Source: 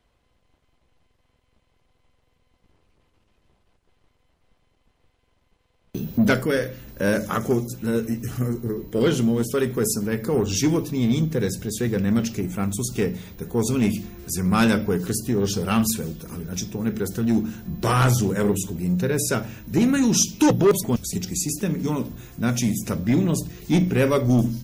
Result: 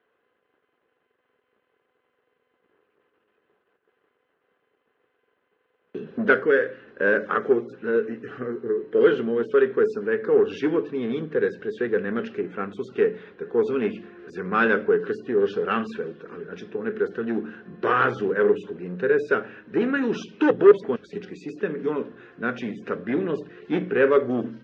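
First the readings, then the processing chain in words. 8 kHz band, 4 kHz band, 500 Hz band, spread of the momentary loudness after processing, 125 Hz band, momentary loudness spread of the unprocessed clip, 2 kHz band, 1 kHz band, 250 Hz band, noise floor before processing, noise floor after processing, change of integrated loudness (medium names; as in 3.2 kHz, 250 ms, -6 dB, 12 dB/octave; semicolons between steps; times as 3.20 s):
under -30 dB, -11.0 dB, +4.0 dB, 14 LU, -16.0 dB, 9 LU, +4.5 dB, +1.0 dB, -6.0 dB, -67 dBFS, -74 dBFS, -1.0 dB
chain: cabinet simulation 420–2500 Hz, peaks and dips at 430 Hz +8 dB, 640 Hz -7 dB, 900 Hz -7 dB, 1.6 kHz +6 dB, 2.2 kHz -7 dB; trim +2.5 dB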